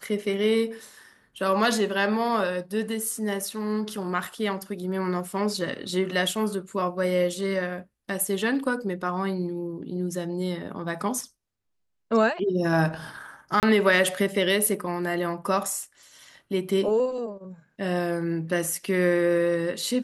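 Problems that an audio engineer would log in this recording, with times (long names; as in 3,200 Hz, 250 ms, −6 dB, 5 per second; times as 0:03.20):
0:13.60–0:13.63: drop-out 28 ms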